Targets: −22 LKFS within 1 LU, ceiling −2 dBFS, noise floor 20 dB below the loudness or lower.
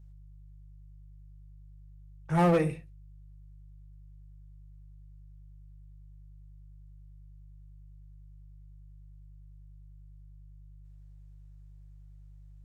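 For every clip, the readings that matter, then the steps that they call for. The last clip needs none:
share of clipped samples 0.3%; peaks flattened at −19.0 dBFS; mains hum 50 Hz; hum harmonics up to 150 Hz; level of the hum −48 dBFS; integrated loudness −27.5 LKFS; sample peak −19.0 dBFS; target loudness −22.0 LKFS
→ clipped peaks rebuilt −19 dBFS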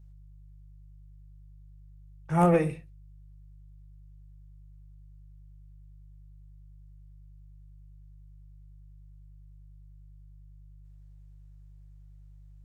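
share of clipped samples 0.0%; mains hum 50 Hz; hum harmonics up to 400 Hz; level of the hum −48 dBFS
→ hum removal 50 Hz, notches 8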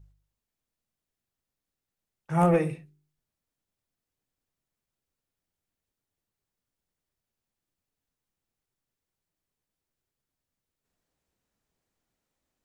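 mains hum none found; integrated loudness −25.5 LKFS; sample peak −11.0 dBFS; target loudness −22.0 LKFS
→ level +3.5 dB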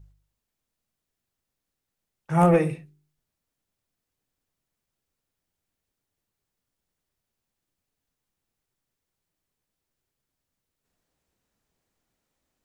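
integrated loudness −22.0 LKFS; sample peak −7.5 dBFS; background noise floor −85 dBFS

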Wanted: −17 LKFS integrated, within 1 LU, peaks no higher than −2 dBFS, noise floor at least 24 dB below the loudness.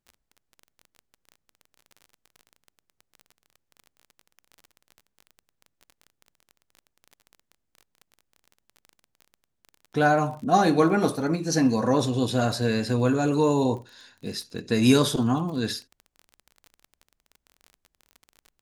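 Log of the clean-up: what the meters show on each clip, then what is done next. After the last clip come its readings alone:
crackle rate 26 per second; integrated loudness −23.5 LKFS; sample peak −6.5 dBFS; target loudness −17.0 LKFS
→ click removal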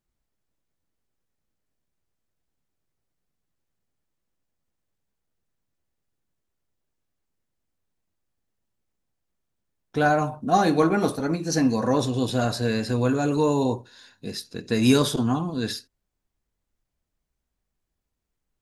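crackle rate 0 per second; integrated loudness −23.0 LKFS; sample peak −6.5 dBFS; target loudness −17.0 LKFS
→ level +6 dB
brickwall limiter −2 dBFS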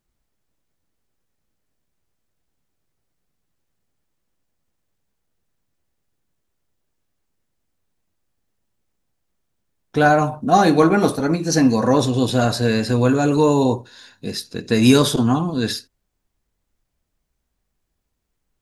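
integrated loudness −17.5 LKFS; sample peak −2.0 dBFS; background noise floor −75 dBFS

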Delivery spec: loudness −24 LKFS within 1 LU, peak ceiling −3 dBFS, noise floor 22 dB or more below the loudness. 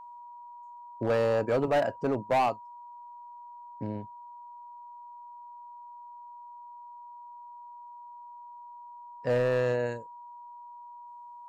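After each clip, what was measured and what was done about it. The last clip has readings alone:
share of clipped samples 0.9%; peaks flattened at −20.5 dBFS; interfering tone 960 Hz; level of the tone −44 dBFS; integrated loudness −29.0 LKFS; sample peak −20.5 dBFS; target loudness −24.0 LKFS
→ clipped peaks rebuilt −20.5 dBFS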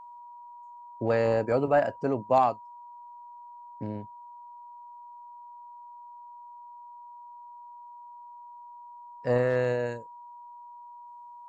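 share of clipped samples 0.0%; interfering tone 960 Hz; level of the tone −44 dBFS
→ notch filter 960 Hz, Q 30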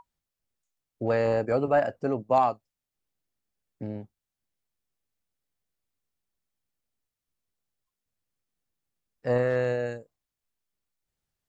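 interfering tone none found; integrated loudness −26.5 LKFS; sample peak −11.0 dBFS; target loudness −24.0 LKFS
→ level +2.5 dB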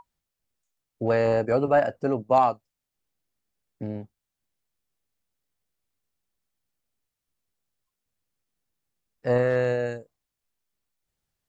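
integrated loudness −24.0 LKFS; sample peak −8.5 dBFS; background noise floor −86 dBFS

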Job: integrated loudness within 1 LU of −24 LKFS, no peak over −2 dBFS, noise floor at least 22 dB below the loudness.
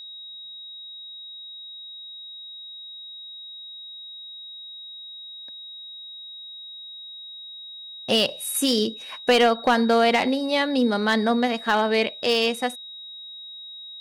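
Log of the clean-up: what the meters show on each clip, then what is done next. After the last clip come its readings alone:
share of clipped samples 0.2%; peaks flattened at −12.0 dBFS; interfering tone 3,800 Hz; level of the tone −37 dBFS; integrated loudness −21.5 LKFS; sample peak −12.0 dBFS; target loudness −24.0 LKFS
→ clipped peaks rebuilt −12 dBFS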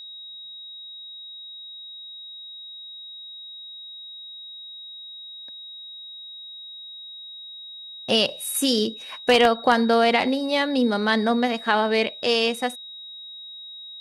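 share of clipped samples 0.0%; interfering tone 3,800 Hz; level of the tone −37 dBFS
→ notch filter 3,800 Hz, Q 30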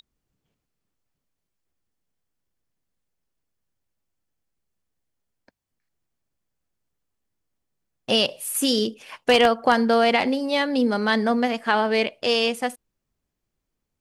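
interfering tone none found; integrated loudness −21.5 LKFS; sample peak −3.0 dBFS; target loudness −24.0 LKFS
→ level −2.5 dB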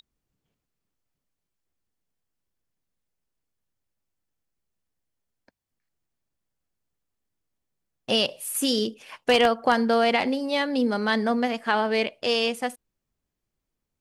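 integrated loudness −24.0 LKFS; sample peak −5.5 dBFS; background noise floor −84 dBFS

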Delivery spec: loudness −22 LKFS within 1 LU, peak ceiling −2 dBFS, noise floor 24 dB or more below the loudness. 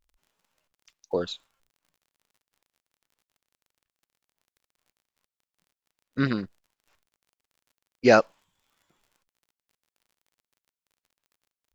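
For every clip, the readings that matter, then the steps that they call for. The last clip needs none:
crackle rate 38 per second; integrated loudness −24.5 LKFS; sample peak −2.5 dBFS; target loudness −22.0 LKFS
→ click removal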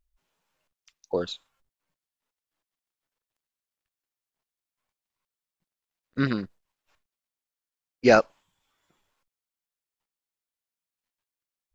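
crackle rate 0.26 per second; integrated loudness −24.5 LKFS; sample peak −2.5 dBFS; target loudness −22.0 LKFS
→ level +2.5 dB
brickwall limiter −2 dBFS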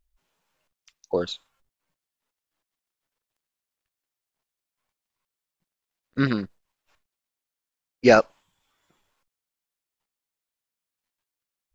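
integrated loudness −22.5 LKFS; sample peak −2.0 dBFS; background noise floor −89 dBFS

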